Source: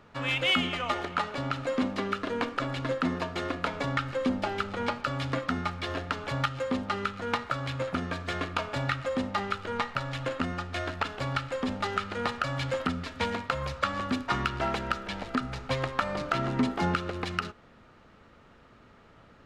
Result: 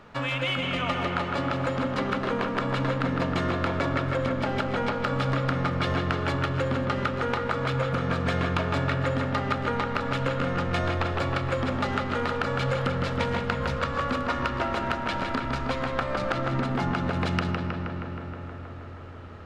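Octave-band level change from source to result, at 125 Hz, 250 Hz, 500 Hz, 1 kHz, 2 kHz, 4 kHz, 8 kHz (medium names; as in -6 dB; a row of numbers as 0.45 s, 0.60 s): +7.5 dB, +3.5 dB, +4.5 dB, +3.0 dB, +2.5 dB, 0.0 dB, -0.5 dB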